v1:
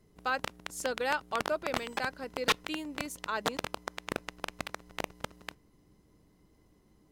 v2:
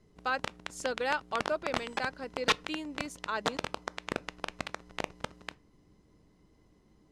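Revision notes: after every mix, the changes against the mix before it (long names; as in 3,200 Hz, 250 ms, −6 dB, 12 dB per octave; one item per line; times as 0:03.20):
background: send +10.5 dB
master: add low-pass filter 7,600 Hz 12 dB per octave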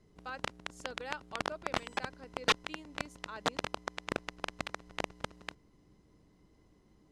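speech −11.5 dB
reverb: off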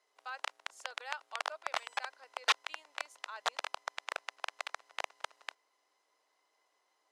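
master: add high-pass filter 660 Hz 24 dB per octave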